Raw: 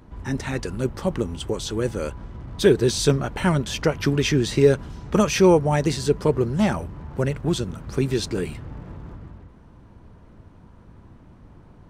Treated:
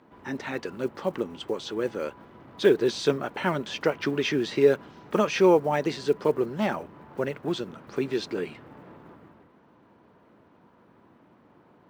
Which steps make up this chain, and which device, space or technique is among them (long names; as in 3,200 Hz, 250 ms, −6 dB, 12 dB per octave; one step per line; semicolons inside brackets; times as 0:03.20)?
early digital voice recorder (band-pass filter 280–3,700 Hz; one scale factor per block 7 bits)
level −2 dB